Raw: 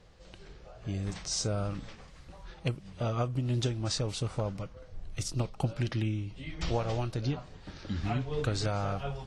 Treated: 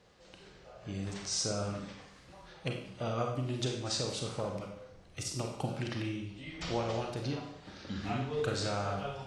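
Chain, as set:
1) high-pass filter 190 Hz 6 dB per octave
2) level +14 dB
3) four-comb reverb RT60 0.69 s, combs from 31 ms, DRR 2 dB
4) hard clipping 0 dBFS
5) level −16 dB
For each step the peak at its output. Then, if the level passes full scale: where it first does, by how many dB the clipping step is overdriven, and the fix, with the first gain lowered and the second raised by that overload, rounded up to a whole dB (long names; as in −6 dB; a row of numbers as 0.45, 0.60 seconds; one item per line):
−17.0, −3.0, −2.5, −2.5, −18.5 dBFS
no step passes full scale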